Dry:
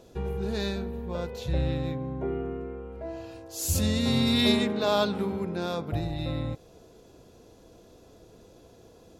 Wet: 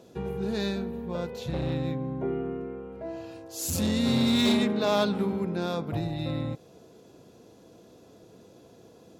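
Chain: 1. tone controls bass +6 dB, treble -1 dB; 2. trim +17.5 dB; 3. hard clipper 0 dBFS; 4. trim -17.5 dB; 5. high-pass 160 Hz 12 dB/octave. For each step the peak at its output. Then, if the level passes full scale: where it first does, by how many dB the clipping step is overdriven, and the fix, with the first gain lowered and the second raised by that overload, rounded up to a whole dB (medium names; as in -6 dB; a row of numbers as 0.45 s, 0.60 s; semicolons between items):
-8.0 dBFS, +9.5 dBFS, 0.0 dBFS, -17.5 dBFS, -12.0 dBFS; step 2, 9.5 dB; step 2 +7.5 dB, step 4 -7.5 dB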